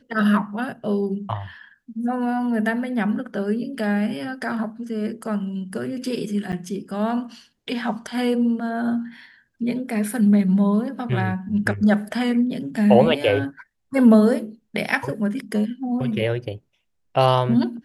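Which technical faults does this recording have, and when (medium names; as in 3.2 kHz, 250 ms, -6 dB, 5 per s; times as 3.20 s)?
6.52–6.53 s: dropout 8.2 ms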